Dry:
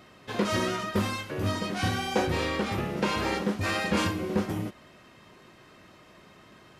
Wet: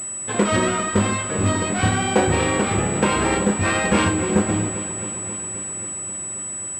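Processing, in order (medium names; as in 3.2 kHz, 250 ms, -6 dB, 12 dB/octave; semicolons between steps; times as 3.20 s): echo whose repeats swap between lows and highs 133 ms, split 870 Hz, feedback 86%, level -11.5 dB; class-D stage that switches slowly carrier 7.9 kHz; trim +8 dB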